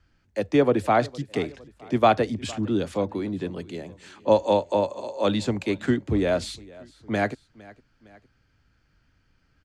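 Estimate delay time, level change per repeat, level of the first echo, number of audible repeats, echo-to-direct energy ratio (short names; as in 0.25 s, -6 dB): 0.459 s, -5.5 dB, -22.0 dB, 2, -21.0 dB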